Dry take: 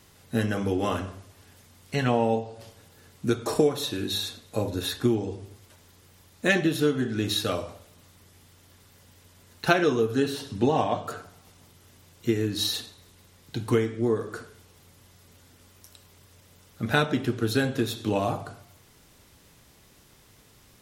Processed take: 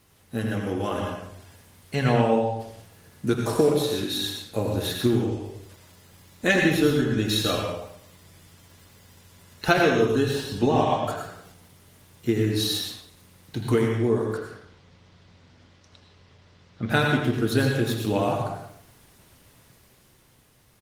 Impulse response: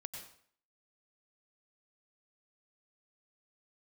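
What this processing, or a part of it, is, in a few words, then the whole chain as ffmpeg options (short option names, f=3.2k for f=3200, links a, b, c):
speakerphone in a meeting room: -filter_complex "[0:a]asettb=1/sr,asplit=3[a][b][c];[a]atrim=end=14.374[d];[b]atrim=start=14.37:end=16.9,asetpts=PTS-STARTPTS,afade=t=in:d=0.004:c=qsin,afade=t=out:st=2.526:d=0.004:c=qsin,lowpass=f=5.2k:w=0.5412,lowpass=f=5.2k:w=1.3066[e];[c]atrim=start=16.896[f];[d][e]acrossfade=d=0.004:c1=hsin:c2=qsin[g];[g][f]acrossfade=d=0.004:c1=qsin:c2=hsin[h];[1:a]atrim=start_sample=2205[i];[h][i]afir=irnorm=-1:irlink=0,asplit=2[j][k];[k]adelay=80,highpass=300,lowpass=3.4k,asoftclip=type=hard:threshold=-17.5dB,volume=-8dB[l];[j][l]amix=inputs=2:normalize=0,dynaudnorm=f=100:g=21:m=4.5dB,volume=1.5dB" -ar 48000 -c:a libopus -b:a 24k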